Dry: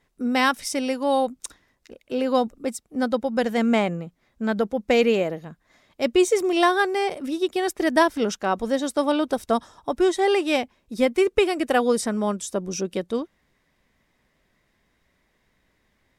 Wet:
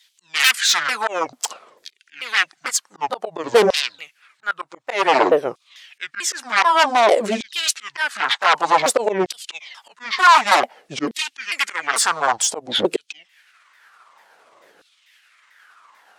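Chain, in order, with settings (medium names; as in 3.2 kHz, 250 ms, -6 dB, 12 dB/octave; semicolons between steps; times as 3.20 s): sawtooth pitch modulation -11 st, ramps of 443 ms; slow attack 263 ms; sine folder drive 14 dB, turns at -9.5 dBFS; LFO high-pass saw down 0.54 Hz 400–3800 Hz; trim -1.5 dB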